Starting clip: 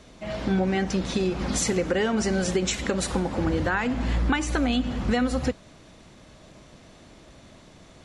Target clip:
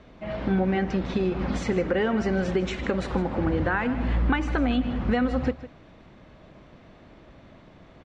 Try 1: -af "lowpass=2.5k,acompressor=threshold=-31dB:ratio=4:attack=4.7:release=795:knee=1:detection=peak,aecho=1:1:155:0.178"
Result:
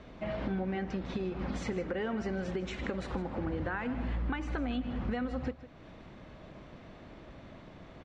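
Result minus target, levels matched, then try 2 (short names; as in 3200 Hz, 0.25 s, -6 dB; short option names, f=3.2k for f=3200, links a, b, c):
compressor: peak gain reduction +11.5 dB
-af "lowpass=2.5k,aecho=1:1:155:0.178"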